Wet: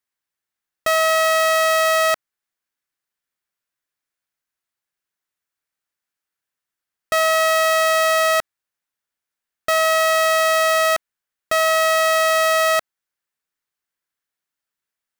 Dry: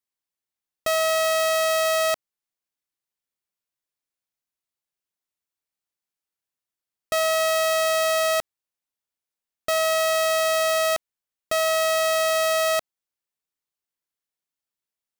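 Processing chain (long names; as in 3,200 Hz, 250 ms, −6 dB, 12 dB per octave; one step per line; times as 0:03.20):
parametric band 1,600 Hz +7.5 dB 0.91 octaves
level +2.5 dB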